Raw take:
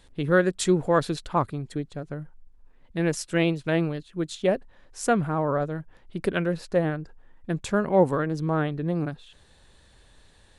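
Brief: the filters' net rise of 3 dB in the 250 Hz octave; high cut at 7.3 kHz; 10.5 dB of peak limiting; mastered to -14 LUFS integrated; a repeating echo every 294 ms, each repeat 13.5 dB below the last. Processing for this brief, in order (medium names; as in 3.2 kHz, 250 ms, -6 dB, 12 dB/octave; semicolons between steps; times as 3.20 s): low-pass 7.3 kHz; peaking EQ 250 Hz +5 dB; peak limiter -17 dBFS; feedback delay 294 ms, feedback 21%, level -13.5 dB; trim +14.5 dB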